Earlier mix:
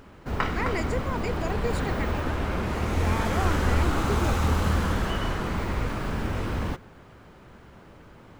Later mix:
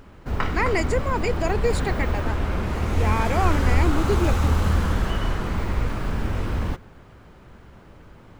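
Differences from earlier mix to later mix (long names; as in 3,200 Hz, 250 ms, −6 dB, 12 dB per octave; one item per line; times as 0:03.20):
speech +7.5 dB
background: add low-shelf EQ 80 Hz +8 dB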